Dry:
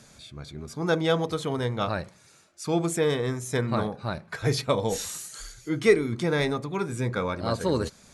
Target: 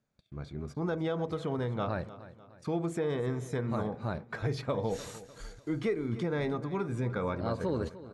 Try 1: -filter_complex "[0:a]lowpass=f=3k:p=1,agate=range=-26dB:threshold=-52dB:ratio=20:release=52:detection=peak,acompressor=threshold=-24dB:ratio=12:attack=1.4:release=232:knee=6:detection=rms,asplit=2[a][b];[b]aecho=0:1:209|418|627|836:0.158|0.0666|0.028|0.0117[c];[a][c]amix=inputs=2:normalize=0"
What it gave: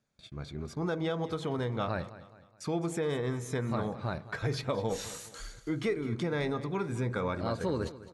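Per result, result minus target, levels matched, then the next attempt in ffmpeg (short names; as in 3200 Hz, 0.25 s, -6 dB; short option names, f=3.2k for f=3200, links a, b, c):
echo 92 ms early; 4000 Hz band +5.0 dB
-filter_complex "[0:a]lowpass=f=3k:p=1,agate=range=-26dB:threshold=-52dB:ratio=20:release=52:detection=peak,acompressor=threshold=-24dB:ratio=12:attack=1.4:release=232:knee=6:detection=rms,asplit=2[a][b];[b]aecho=0:1:301|602|903|1204:0.158|0.0666|0.028|0.0117[c];[a][c]amix=inputs=2:normalize=0"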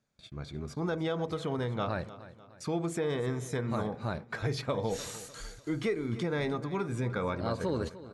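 4000 Hz band +5.0 dB
-filter_complex "[0:a]lowpass=f=1.4k:p=1,agate=range=-26dB:threshold=-52dB:ratio=20:release=52:detection=peak,acompressor=threshold=-24dB:ratio=12:attack=1.4:release=232:knee=6:detection=rms,asplit=2[a][b];[b]aecho=0:1:301|602|903|1204:0.158|0.0666|0.028|0.0117[c];[a][c]amix=inputs=2:normalize=0"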